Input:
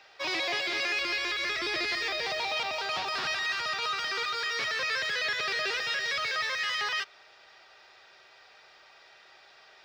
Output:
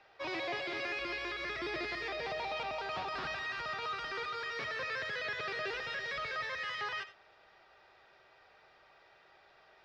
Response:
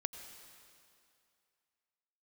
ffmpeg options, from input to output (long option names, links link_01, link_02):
-filter_complex "[0:a]lowpass=frequency=1300:poles=1,lowshelf=frequency=160:gain=6.5[link_01];[1:a]atrim=start_sample=2205,afade=type=out:start_time=0.17:duration=0.01,atrim=end_sample=7938,asetrate=52920,aresample=44100[link_02];[link_01][link_02]afir=irnorm=-1:irlink=0"